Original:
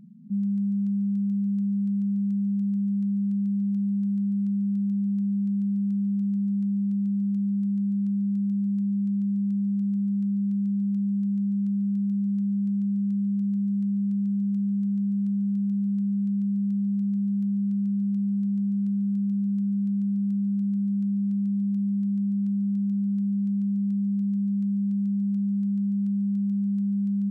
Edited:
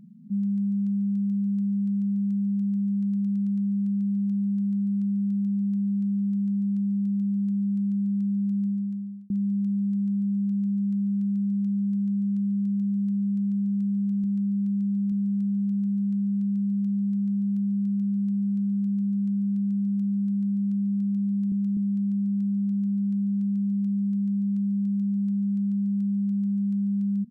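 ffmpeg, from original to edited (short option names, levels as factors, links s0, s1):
-filter_complex "[0:a]asplit=14[s0][s1][s2][s3][s4][s5][s6][s7][s8][s9][s10][s11][s12][s13];[s0]atrim=end=3.042[s14];[s1]atrim=start=2.928:end=3.042[s15];[s2]atrim=start=2.928:end=3.042[s16];[s3]atrim=start=2.928:end=3.042[s17];[s4]atrim=start=2.928:end=3.042[s18];[s5]atrim=start=2.928:end=5.512[s19];[s6]atrim=start=5.918:end=9.16,asetpts=PTS-STARTPTS,afade=t=out:st=2.592:d=0.65[s20];[s7]atrim=start=9.16:end=10.092,asetpts=PTS-STARTPTS,afade=t=in:d=0.004:c=hsin[s21];[s8]atrim=start=10.968:end=14.982[s22];[s9]atrim=start=10.088:end=10.972[s23];[s10]atrim=start=14.978:end=18.452[s24];[s11]atrim=start=18.898:end=21.832[s25];[s12]atrim=start=11.538:end=11.792[s26];[s13]atrim=start=21.828[s27];[s14][s15]acrossfade=d=0.004:c1=hsin:c2=hsin[s28];[s28][s16]acrossfade=d=0.004:c1=hsin:c2=hsin[s29];[s29][s17]acrossfade=d=0.004:c1=hsin:c2=hsin[s30];[s30][s18]acrossfade=d=0.004:c1=hsin:c2=hsin[s31];[s31][s19]acrossfade=d=0.004:c1=hsin:c2=hsin[s32];[s20][s21]concat=n=2:v=0:a=1[s33];[s32][s33]acrossfade=d=0.004:c1=hsin:c2=hsin[s34];[s34][s22]acrossfade=d=0.004:c1=hsin:c2=hsin[s35];[s35][s23]acrossfade=d=0.004:c1=hsin:c2=hsin[s36];[s36][s24]acrossfade=d=0.004:c1=hsin:c2=hsin[s37];[s37][s25]acrossfade=d=0.004:c1=hsin:c2=hsin[s38];[s38][s26]acrossfade=d=0.004:c1=hsin:c2=hsin[s39];[s39][s27]acrossfade=d=0.004:c1=hsin:c2=hsin"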